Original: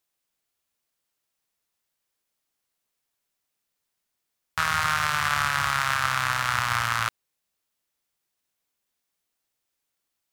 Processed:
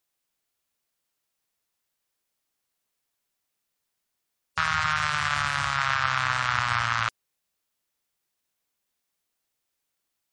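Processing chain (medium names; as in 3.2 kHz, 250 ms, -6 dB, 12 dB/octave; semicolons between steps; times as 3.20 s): 4.59–5.76 s: peaking EQ 470 Hz -> 1.6 kHz -2.5 dB 1.6 oct; spectral gate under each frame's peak -25 dB strong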